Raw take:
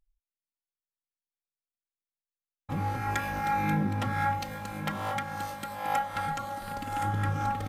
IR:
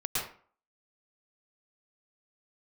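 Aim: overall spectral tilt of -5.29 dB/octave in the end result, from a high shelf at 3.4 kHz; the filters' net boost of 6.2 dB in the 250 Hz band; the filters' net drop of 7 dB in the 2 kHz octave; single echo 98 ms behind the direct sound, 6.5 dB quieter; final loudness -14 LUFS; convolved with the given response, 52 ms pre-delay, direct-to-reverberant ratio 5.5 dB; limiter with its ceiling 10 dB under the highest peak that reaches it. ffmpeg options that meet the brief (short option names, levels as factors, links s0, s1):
-filter_complex "[0:a]equalizer=f=250:t=o:g=8.5,equalizer=f=2000:t=o:g=-8,highshelf=f=3400:g=-4.5,alimiter=limit=0.075:level=0:latency=1,aecho=1:1:98:0.473,asplit=2[s0][s1];[1:a]atrim=start_sample=2205,adelay=52[s2];[s1][s2]afir=irnorm=-1:irlink=0,volume=0.237[s3];[s0][s3]amix=inputs=2:normalize=0,volume=6.31"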